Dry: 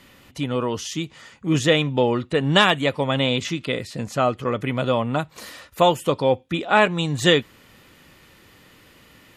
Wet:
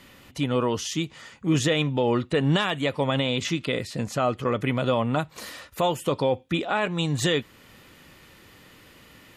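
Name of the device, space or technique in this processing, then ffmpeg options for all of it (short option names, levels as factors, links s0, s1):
stacked limiters: -af "alimiter=limit=0.447:level=0:latency=1:release=406,alimiter=limit=0.237:level=0:latency=1:release=51"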